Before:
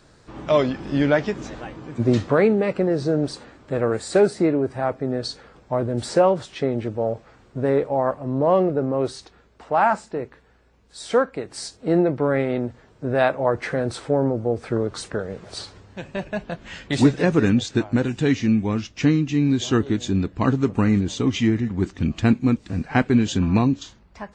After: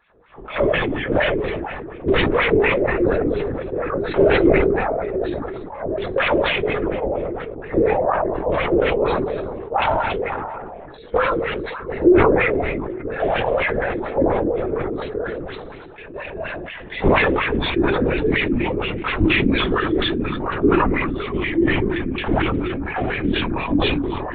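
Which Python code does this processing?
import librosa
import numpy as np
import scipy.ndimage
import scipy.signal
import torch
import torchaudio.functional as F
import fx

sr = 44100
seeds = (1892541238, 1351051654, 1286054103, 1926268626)

p1 = (np.mod(10.0 ** (7.5 / 20.0) * x + 1.0, 2.0) - 1.0) / 10.0 ** (7.5 / 20.0)
p2 = fx.room_shoebox(p1, sr, seeds[0], volume_m3=870.0, walls='furnished', distance_m=4.1)
p3 = fx.wah_lfo(p2, sr, hz=4.2, low_hz=310.0, high_hz=2600.0, q=2.6)
p4 = p3 + fx.echo_stepped(p3, sr, ms=280, hz=2900.0, octaves=-1.4, feedback_pct=70, wet_db=-11.5, dry=0)
p5 = fx.lpc_vocoder(p4, sr, seeds[1], excitation='whisper', order=16)
y = fx.sustainer(p5, sr, db_per_s=24.0)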